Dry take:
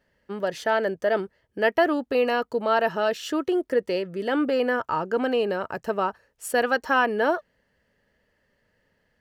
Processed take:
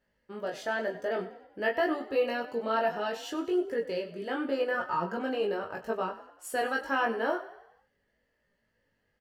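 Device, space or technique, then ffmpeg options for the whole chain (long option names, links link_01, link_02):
double-tracked vocal: -filter_complex "[0:a]asplit=2[link_01][link_02];[link_02]adelay=22,volume=-6dB[link_03];[link_01][link_03]amix=inputs=2:normalize=0,flanger=delay=17:depth=2.6:speed=0.82,asettb=1/sr,asplit=3[link_04][link_05][link_06];[link_04]atrim=end=4.744[link_07];[link_05]atrim=start=4.74:end=5.18,asetpts=PTS-STARTPTS,afade=type=in:duration=0.004:curve=qsin,afade=type=out:start_time=0.436:duration=0.004:curve=qsin,aecho=1:1:5.6:0.88,atrim=end_sample=19404[link_08];[link_06]atrim=start=5.176[link_09];[link_07][link_08]acrossfade=duration=0.004:curve1=hsin:curve2=qsin[link_10];[link_10][link_09]acrossfade=duration=0.004:curve1=qsin:curve2=hsin,asplit=6[link_11][link_12][link_13][link_14][link_15][link_16];[link_12]adelay=96,afreqshift=33,volume=-15dB[link_17];[link_13]adelay=192,afreqshift=66,volume=-21.2dB[link_18];[link_14]adelay=288,afreqshift=99,volume=-27.4dB[link_19];[link_15]adelay=384,afreqshift=132,volume=-33.6dB[link_20];[link_16]adelay=480,afreqshift=165,volume=-39.8dB[link_21];[link_11][link_17][link_18][link_19][link_20][link_21]amix=inputs=6:normalize=0,volume=-5dB"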